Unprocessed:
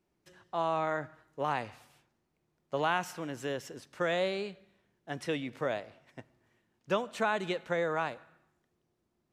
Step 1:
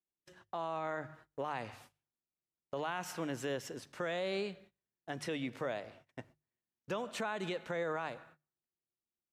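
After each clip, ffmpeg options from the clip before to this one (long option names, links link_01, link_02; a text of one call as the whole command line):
ffmpeg -i in.wav -af "agate=range=-26dB:threshold=-58dB:ratio=16:detection=peak,bandreject=frequency=50:width_type=h:width=6,bandreject=frequency=100:width_type=h:width=6,bandreject=frequency=150:width_type=h:width=6,alimiter=level_in=5dB:limit=-24dB:level=0:latency=1:release=121,volume=-5dB,volume=1dB" out.wav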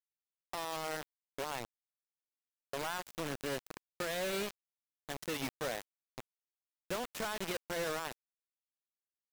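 ffmpeg -i in.wav -af "acrusher=bits=5:mix=0:aa=0.000001,volume=-1.5dB" out.wav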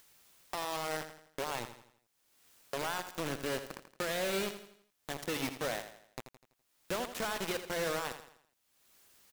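ffmpeg -i in.wav -filter_complex "[0:a]acompressor=mode=upward:threshold=-41dB:ratio=2.5,asplit=2[link_01][link_02];[link_02]aecho=0:1:83|166|249|332|415:0.299|0.131|0.0578|0.0254|0.0112[link_03];[link_01][link_03]amix=inputs=2:normalize=0,volume=2dB" out.wav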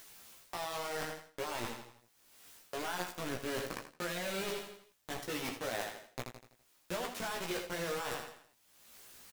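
ffmpeg -i in.wav -filter_complex "[0:a]areverse,acompressor=threshold=-43dB:ratio=6,areverse,flanger=delay=9:depth=9:regen=-17:speed=0.7:shape=triangular,asplit=2[link_01][link_02];[link_02]adelay=17,volume=-5.5dB[link_03];[link_01][link_03]amix=inputs=2:normalize=0,volume=10.5dB" out.wav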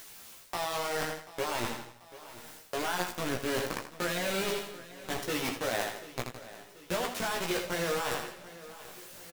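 ffmpeg -i in.wav -af "aecho=1:1:737|1474|2211|2948|3685:0.141|0.0777|0.0427|0.0235|0.0129,volume=6dB" out.wav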